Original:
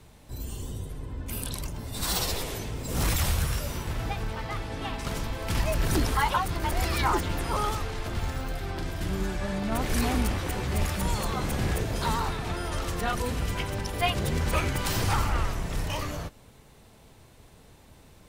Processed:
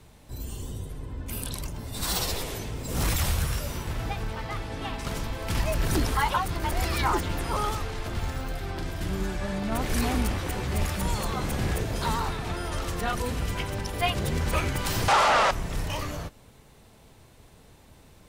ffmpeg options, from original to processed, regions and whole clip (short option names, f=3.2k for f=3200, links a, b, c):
-filter_complex "[0:a]asettb=1/sr,asplit=3[a][b][c];[a]atrim=end=15.084[d];[b]atrim=start=15.08:end=15.51,asetpts=PTS-STARTPTS,afade=t=in:d=0.004:c=qsin,afade=t=out:st=0.426:d=0.004:c=qsin,lowshelf=f=390:t=q:w=3:g=-14,asplit=2[e][f];[f]highpass=f=720:p=1,volume=27dB,asoftclip=type=tanh:threshold=-13.5dB[g];[e][g]amix=inputs=2:normalize=0,lowpass=f=4.2k:p=1,volume=-6dB,lowpass=9k[h];[c]atrim=start=15.506[i];[d][h]acrossfade=d=0.004:c1=hsin:c2=qsin[j];[j][i]acrossfade=d=0.004:c1=qsin:c2=hsin"